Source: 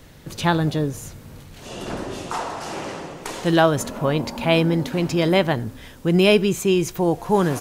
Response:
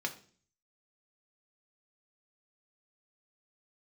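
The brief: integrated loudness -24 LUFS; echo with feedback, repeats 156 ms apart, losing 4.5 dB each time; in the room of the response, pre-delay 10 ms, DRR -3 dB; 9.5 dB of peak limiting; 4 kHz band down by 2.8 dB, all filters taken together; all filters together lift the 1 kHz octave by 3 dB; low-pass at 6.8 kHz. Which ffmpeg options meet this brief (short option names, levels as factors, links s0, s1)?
-filter_complex "[0:a]lowpass=6800,equalizer=f=1000:t=o:g=4,equalizer=f=4000:t=o:g=-4,alimiter=limit=0.266:level=0:latency=1,aecho=1:1:156|312|468|624|780|936|1092|1248|1404:0.596|0.357|0.214|0.129|0.0772|0.0463|0.0278|0.0167|0.01,asplit=2[s0][s1];[1:a]atrim=start_sample=2205,adelay=10[s2];[s1][s2]afir=irnorm=-1:irlink=0,volume=0.944[s3];[s0][s3]amix=inputs=2:normalize=0,volume=0.501"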